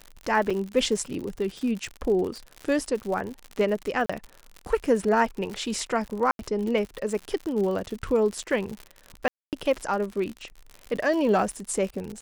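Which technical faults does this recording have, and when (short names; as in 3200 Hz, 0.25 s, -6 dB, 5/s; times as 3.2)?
crackle 82/s -31 dBFS
0.5–0.51 gap 5.1 ms
4.06–4.09 gap 35 ms
6.31–6.39 gap 82 ms
9.28–9.53 gap 0.248 s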